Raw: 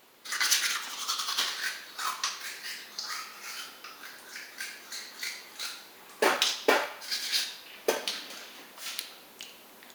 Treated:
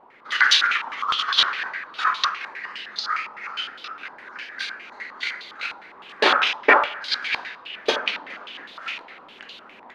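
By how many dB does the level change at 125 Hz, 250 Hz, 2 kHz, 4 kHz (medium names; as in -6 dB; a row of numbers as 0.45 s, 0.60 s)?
no reading, +4.5 dB, +11.0 dB, +7.5 dB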